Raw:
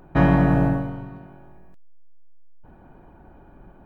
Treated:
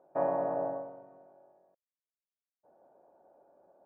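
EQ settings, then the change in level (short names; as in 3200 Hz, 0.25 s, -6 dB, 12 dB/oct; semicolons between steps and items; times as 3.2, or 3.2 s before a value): dynamic EQ 1000 Hz, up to +6 dB, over -42 dBFS, Q 2.6; ladder band-pass 640 Hz, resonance 65%; tilt -2.5 dB/oct; -3.0 dB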